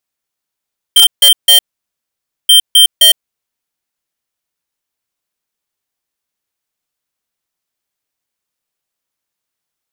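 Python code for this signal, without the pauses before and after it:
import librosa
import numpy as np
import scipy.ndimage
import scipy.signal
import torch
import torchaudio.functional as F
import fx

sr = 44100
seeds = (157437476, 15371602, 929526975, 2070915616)

y = fx.beep_pattern(sr, wave='square', hz=3150.0, on_s=0.11, off_s=0.15, beeps=3, pause_s=0.9, groups=2, level_db=-5.0)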